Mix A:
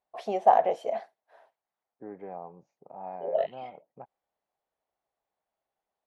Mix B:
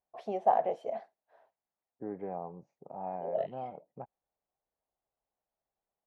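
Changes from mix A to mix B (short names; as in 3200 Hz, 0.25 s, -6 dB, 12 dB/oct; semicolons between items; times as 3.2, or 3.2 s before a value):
first voice -7.0 dB; master: add tilt -2 dB/oct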